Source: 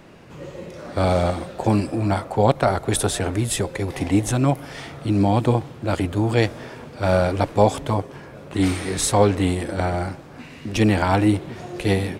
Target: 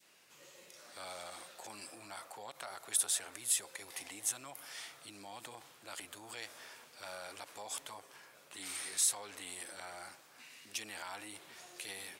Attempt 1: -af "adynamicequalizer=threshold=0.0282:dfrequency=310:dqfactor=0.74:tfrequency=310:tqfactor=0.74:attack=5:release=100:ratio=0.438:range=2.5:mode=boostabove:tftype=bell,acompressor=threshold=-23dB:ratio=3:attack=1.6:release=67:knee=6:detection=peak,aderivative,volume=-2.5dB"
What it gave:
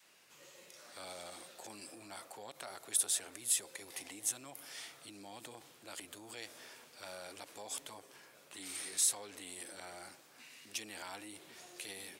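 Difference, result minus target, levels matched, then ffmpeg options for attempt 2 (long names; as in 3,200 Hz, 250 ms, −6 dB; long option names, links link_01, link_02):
1,000 Hz band −3.0 dB
-af "adynamicequalizer=threshold=0.0282:dfrequency=1100:dqfactor=0.74:tfrequency=1100:tqfactor=0.74:attack=5:release=100:ratio=0.438:range=2.5:mode=boostabove:tftype=bell,acompressor=threshold=-23dB:ratio=3:attack=1.6:release=67:knee=6:detection=peak,aderivative,volume=-2.5dB"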